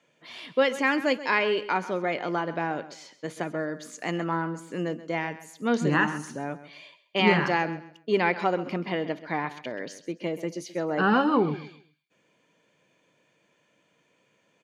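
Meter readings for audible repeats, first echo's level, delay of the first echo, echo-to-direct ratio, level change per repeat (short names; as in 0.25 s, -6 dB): 2, -15.0 dB, 0.132 s, -14.5 dB, -11.5 dB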